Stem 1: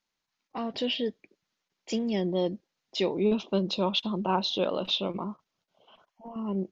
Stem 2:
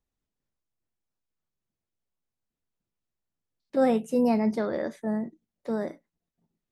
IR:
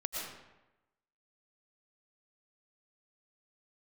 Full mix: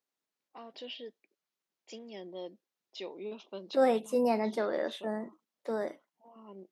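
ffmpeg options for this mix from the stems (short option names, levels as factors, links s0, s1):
-filter_complex "[0:a]volume=0.237[s0];[1:a]volume=0.891,asplit=2[s1][s2];[s2]apad=whole_len=295986[s3];[s0][s3]sidechaincompress=threshold=0.0126:ratio=8:attack=16:release=156[s4];[s4][s1]amix=inputs=2:normalize=0,highpass=350"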